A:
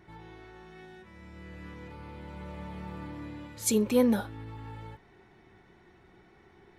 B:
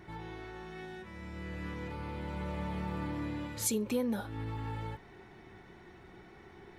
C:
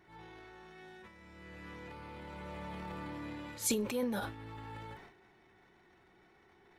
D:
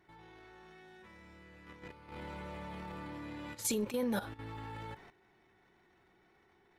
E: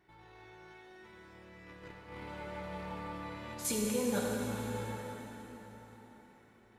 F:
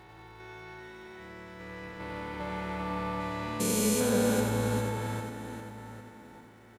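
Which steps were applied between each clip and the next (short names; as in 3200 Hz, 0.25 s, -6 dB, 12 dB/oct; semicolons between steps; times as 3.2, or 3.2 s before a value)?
compressor 5:1, threshold -35 dBFS, peak gain reduction 15 dB; gain +4.5 dB
low shelf 280 Hz -8 dB; transient shaper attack -4 dB, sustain +10 dB; upward expander 1.5:1, over -52 dBFS; gain +2 dB
level quantiser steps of 12 dB; gain +3.5 dB
plate-style reverb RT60 4.3 s, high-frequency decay 0.85×, DRR -2.5 dB; gain -2 dB
stepped spectrum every 0.4 s; crackle 550/s -67 dBFS; echo 91 ms -5 dB; gain +7.5 dB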